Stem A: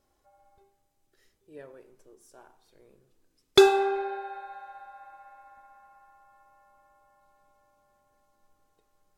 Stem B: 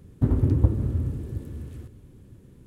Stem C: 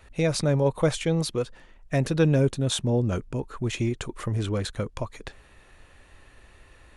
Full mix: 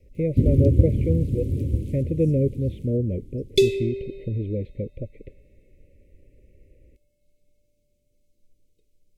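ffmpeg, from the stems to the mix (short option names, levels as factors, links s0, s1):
-filter_complex "[0:a]lowshelf=f=140:g=11.5,volume=0.794[s0];[1:a]adelay=150,volume=1.41,asplit=2[s1][s2];[s2]volume=0.376[s3];[2:a]lowpass=f=1600:w=0.5412,lowpass=f=1600:w=1.3066,volume=1[s4];[s3]aecho=0:1:946|1892|2838|3784:1|0.28|0.0784|0.022[s5];[s0][s1][s4][s5]amix=inputs=4:normalize=0,asuperstop=centerf=1100:order=20:qfactor=0.74"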